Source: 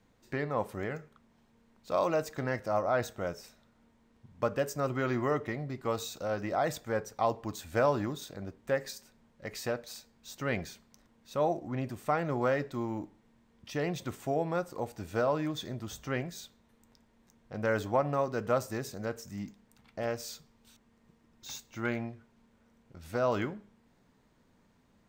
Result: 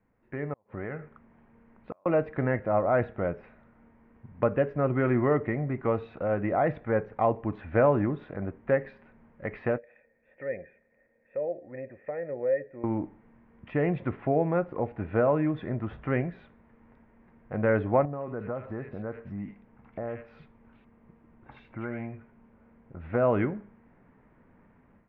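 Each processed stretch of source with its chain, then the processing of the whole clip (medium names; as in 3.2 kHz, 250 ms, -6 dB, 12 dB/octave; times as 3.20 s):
0.53–2.06 s: compression 2.5:1, threshold -41 dBFS + inverted gate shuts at -31 dBFS, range -34 dB
9.78–12.84 s: cascade formant filter e + peaking EQ 1.1 kHz -6.5 dB 0.27 oct + tape noise reduction on one side only encoder only
18.05–23.00 s: compression 2.5:1, threshold -41 dBFS + bands offset in time lows, highs 80 ms, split 1.8 kHz
whole clip: steep low-pass 2.3 kHz 36 dB/octave; dynamic bell 1.2 kHz, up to -6 dB, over -44 dBFS, Q 0.78; level rider gain up to 12.5 dB; trim -5 dB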